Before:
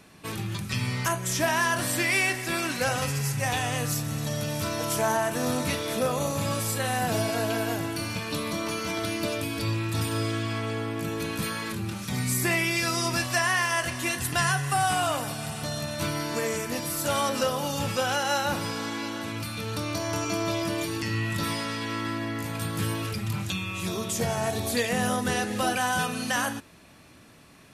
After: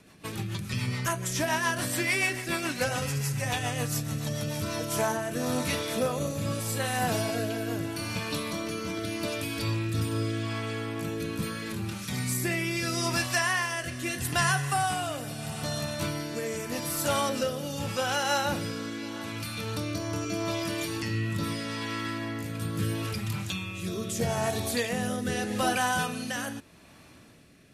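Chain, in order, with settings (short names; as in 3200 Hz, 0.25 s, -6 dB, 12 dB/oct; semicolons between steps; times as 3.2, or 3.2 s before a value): rotary speaker horn 7 Hz, later 0.8 Hz, at 4.36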